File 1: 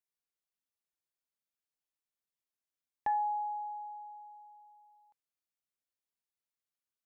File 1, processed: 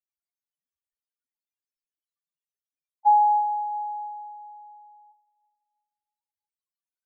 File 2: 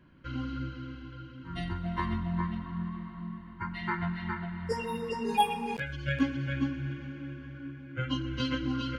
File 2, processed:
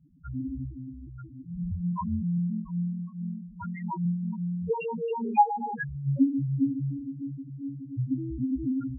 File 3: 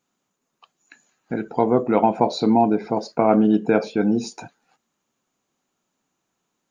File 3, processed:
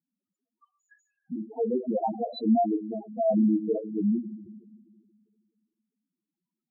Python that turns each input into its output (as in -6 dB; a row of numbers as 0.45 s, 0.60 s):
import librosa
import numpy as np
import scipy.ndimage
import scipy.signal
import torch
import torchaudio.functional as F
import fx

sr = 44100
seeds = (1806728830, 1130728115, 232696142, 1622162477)

y = fx.rev_schroeder(x, sr, rt60_s=2.1, comb_ms=25, drr_db=11.5)
y = fx.spec_topn(y, sr, count=2)
y = y * 10.0 ** (-30 / 20.0) / np.sqrt(np.mean(np.square(y)))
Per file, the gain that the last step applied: +15.5 dB, +7.0 dB, -2.5 dB